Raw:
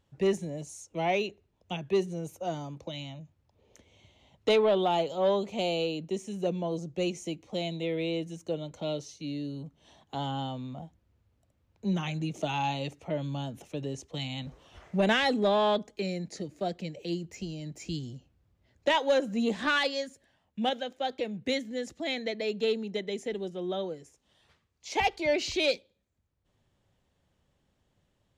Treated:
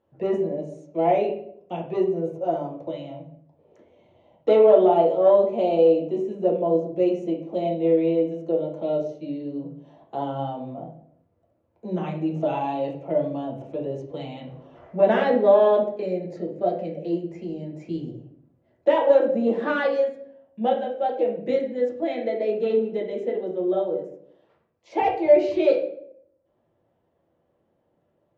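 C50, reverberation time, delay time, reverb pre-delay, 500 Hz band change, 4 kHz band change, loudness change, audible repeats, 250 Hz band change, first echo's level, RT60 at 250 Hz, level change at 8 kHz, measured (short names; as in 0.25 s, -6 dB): 7.0 dB, 0.65 s, none, 6 ms, +10.0 dB, -9.5 dB, +8.0 dB, none, +6.0 dB, none, 0.85 s, under -15 dB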